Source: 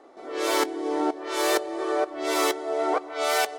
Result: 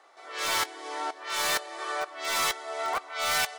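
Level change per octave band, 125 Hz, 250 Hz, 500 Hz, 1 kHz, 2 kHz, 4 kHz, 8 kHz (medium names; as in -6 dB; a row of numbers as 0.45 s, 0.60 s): no reading, -18.5 dB, -11.5 dB, -3.5 dB, +0.5 dB, +1.5 dB, +1.0 dB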